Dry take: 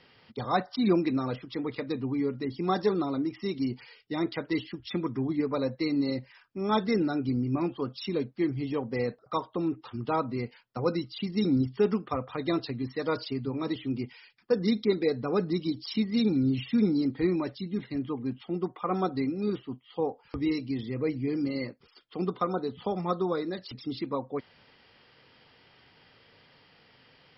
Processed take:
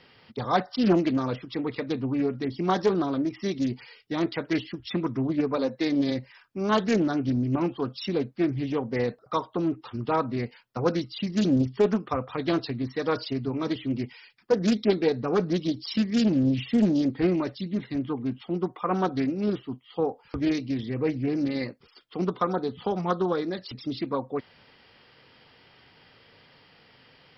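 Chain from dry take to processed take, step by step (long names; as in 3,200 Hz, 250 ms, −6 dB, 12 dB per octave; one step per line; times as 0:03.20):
0:05.56–0:06.10: high-pass filter 210 Hz → 83 Hz 24 dB per octave
highs frequency-modulated by the lows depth 0.39 ms
level +3 dB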